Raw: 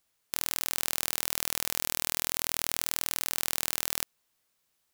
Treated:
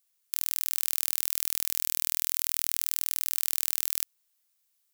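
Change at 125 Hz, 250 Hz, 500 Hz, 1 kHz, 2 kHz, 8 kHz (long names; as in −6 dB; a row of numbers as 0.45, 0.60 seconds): below −20 dB, below −15 dB, below −10 dB, −10.0 dB, −6.5 dB, +0.5 dB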